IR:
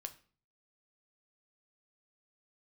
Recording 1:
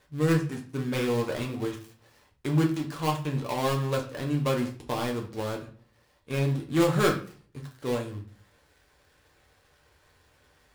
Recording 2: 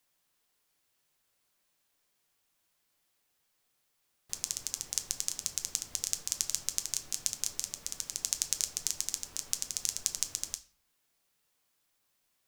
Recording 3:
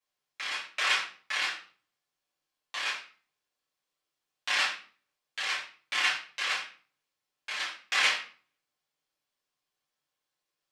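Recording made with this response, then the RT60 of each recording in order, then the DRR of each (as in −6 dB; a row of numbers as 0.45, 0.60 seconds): 2; 0.45, 0.45, 0.45 seconds; 0.0, 7.5, −7.0 decibels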